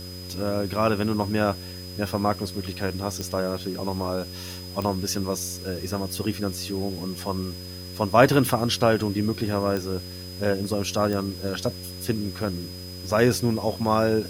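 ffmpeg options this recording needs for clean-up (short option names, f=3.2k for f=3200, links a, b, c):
-af "adeclick=t=4,bandreject=f=90.7:t=h:w=4,bandreject=f=181.4:t=h:w=4,bandreject=f=272.1:t=h:w=4,bandreject=f=362.8:t=h:w=4,bandreject=f=453.5:t=h:w=4,bandreject=f=544.2:t=h:w=4,bandreject=f=5k:w=30,afwtdn=0.0045"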